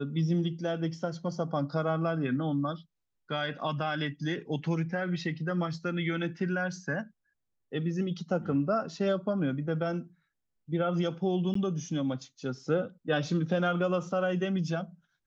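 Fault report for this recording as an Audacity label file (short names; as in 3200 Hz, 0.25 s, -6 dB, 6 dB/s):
11.540000	11.550000	gap 14 ms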